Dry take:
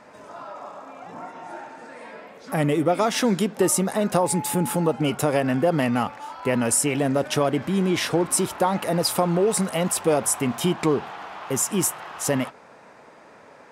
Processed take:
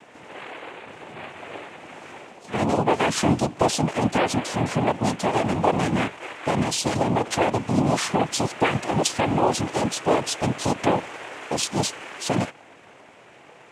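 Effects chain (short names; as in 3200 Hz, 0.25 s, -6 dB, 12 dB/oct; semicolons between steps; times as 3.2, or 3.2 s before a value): noise vocoder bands 4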